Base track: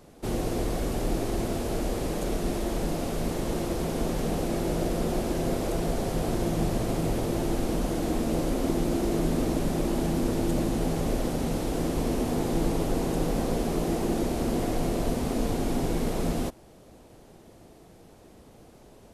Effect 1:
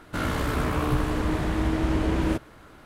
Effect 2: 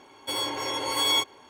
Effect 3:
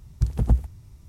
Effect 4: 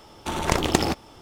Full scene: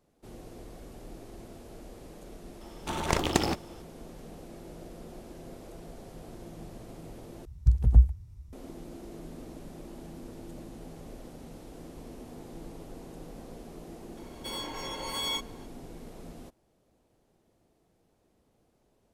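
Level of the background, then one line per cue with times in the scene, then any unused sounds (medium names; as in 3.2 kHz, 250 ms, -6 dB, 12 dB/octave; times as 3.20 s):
base track -18 dB
2.61 s: add 4 -5 dB
7.45 s: replace with 3 -10 dB + peaking EQ 62 Hz +13.5 dB 1.6 oct
14.17 s: add 2 -9.5 dB + companding laws mixed up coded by mu
not used: 1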